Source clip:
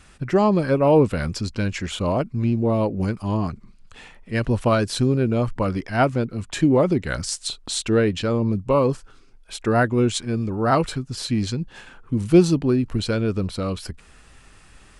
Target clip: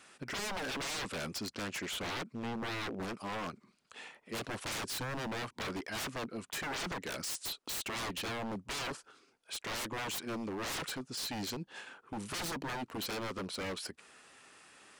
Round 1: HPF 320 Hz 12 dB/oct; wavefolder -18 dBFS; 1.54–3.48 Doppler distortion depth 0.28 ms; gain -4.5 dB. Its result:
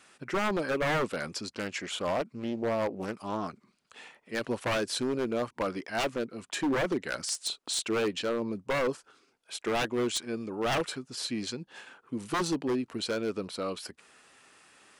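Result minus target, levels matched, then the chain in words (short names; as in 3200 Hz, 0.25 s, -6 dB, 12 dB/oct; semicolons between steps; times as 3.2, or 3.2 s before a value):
wavefolder: distortion -15 dB
HPF 320 Hz 12 dB/oct; wavefolder -28.5 dBFS; 1.54–3.48 Doppler distortion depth 0.28 ms; gain -4.5 dB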